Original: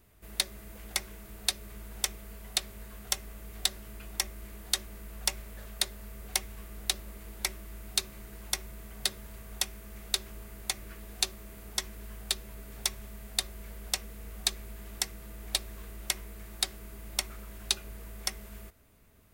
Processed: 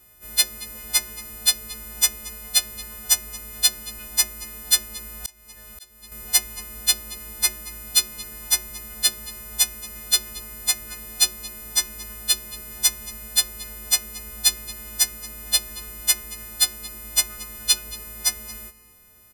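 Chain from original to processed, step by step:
every partial snapped to a pitch grid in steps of 3 semitones
slap from a distant wall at 39 metres, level −17 dB
0:05.18–0:06.12: volume swells 759 ms
level +2.5 dB

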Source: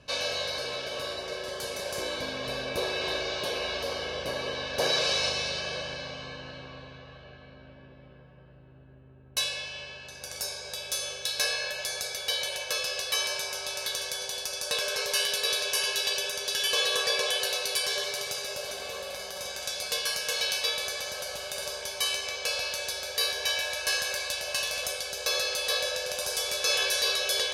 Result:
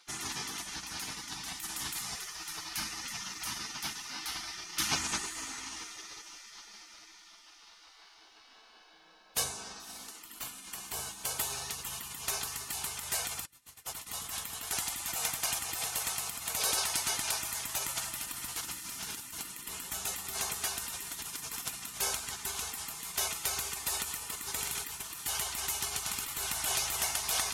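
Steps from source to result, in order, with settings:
feedback delay with all-pass diffusion 583 ms, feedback 54%, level −15.5 dB
0:13.45–0:14.07: noise gate −31 dBFS, range −27 dB
gate on every frequency bin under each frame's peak −20 dB weak
level +7 dB

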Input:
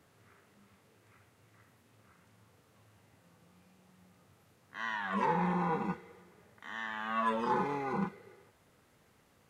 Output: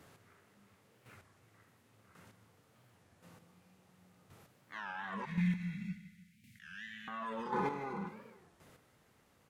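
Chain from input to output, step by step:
0:05.25–0:07.08: elliptic band-stop filter 200–2,000 Hz, stop band 40 dB
brickwall limiter −31 dBFS, peak gain reduction 11.5 dB
square-wave tremolo 0.93 Hz, depth 60%, duty 15%
repeating echo 154 ms, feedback 38%, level −13.5 dB
wow of a warped record 33 1/3 rpm, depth 250 cents
level +5.5 dB

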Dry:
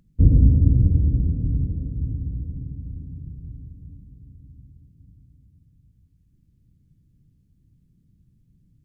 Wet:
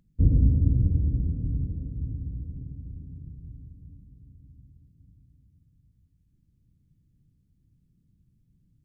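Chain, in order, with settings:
0:02.56–0:03.45: highs frequency-modulated by the lows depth 0.3 ms
level −5.5 dB

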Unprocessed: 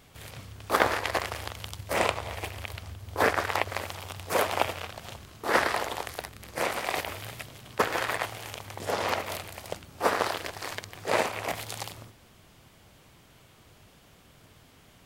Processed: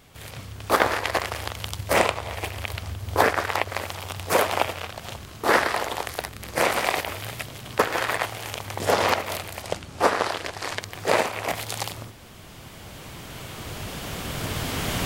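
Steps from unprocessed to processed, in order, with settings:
camcorder AGC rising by 7.3 dB per second
0:09.62–0:10.81: low-pass filter 10,000 Hz 12 dB per octave
level +2.5 dB

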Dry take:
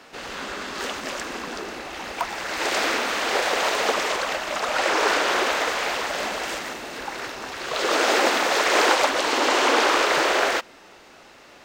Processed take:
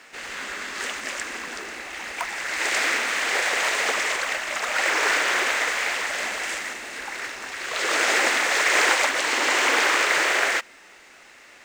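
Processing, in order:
graphic EQ with 10 bands 125 Hz −4 dB, 2,000 Hz +11 dB, 8,000 Hz +11 dB
log-companded quantiser 6 bits
level −6.5 dB

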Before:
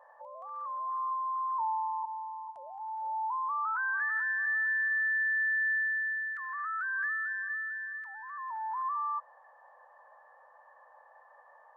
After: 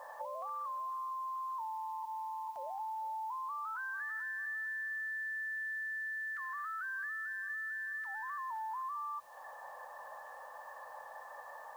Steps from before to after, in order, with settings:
in parallel at −1.5 dB: brickwall limiter −35 dBFS, peak gain reduction 10.5 dB
on the sum: downward compressor 12 to 1, threshold −42 dBFS, peak gain reduction 16 dB
bit-depth reduction 12 bits, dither triangular
level +3.5 dB

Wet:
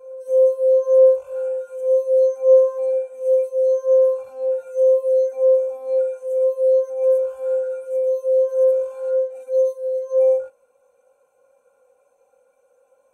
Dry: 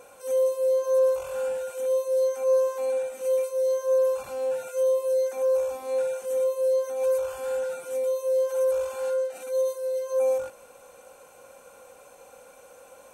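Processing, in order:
backwards echo 859 ms −15.5 dB
every bin expanded away from the loudest bin 1.5 to 1
level +9 dB

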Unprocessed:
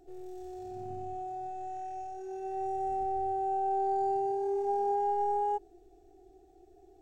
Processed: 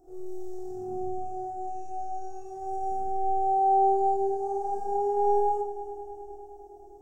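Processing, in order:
flat-topped bell 2,700 Hz −14 dB
mains-hum notches 50/100/150/200/250/300/350/400 Hz
echo machine with several playback heads 103 ms, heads all three, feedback 73%, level −19 dB
four-comb reverb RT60 0.32 s, combs from 27 ms, DRR −2 dB

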